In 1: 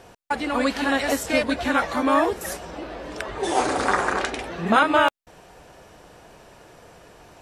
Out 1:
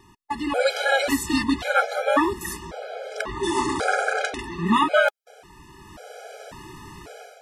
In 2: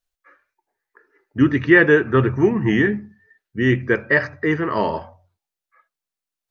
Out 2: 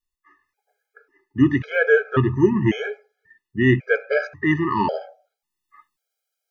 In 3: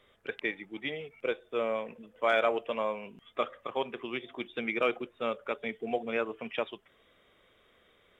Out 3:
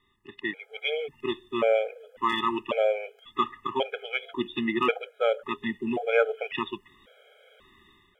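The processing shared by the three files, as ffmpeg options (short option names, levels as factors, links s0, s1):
-af "dynaudnorm=f=360:g=3:m=4.22,afftfilt=real='re*gt(sin(2*PI*0.92*pts/sr)*(1-2*mod(floor(b*sr/1024/420),2)),0)':imag='im*gt(sin(2*PI*0.92*pts/sr)*(1-2*mod(floor(b*sr/1024/420),2)),0)':win_size=1024:overlap=0.75,volume=0.794"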